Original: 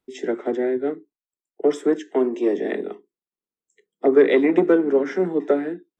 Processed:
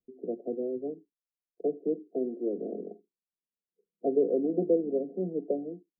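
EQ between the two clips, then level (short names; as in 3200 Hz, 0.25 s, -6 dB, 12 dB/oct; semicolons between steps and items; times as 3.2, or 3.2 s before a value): rippled Chebyshev low-pass 720 Hz, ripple 9 dB; low shelf 71 Hz +10 dB; bell 350 Hz +3.5 dB; -6.5 dB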